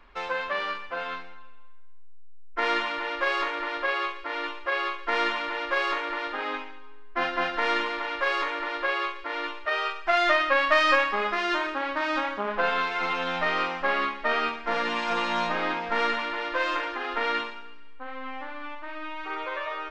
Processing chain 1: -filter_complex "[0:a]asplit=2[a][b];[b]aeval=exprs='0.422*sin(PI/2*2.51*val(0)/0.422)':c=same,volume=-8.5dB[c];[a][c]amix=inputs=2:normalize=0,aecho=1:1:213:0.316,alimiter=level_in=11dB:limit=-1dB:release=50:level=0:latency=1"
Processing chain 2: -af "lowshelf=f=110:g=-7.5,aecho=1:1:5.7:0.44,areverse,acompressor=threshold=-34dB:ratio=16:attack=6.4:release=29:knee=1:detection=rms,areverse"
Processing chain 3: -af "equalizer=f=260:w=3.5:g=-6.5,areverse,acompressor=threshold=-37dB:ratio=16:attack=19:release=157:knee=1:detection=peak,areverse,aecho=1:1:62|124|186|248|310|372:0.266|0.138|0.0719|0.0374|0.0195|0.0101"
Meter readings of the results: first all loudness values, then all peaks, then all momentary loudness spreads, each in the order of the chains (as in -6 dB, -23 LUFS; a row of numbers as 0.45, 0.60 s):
-10.5, -36.0, -38.5 LUFS; -1.0, -24.0, -24.5 dBFS; 10, 3, 4 LU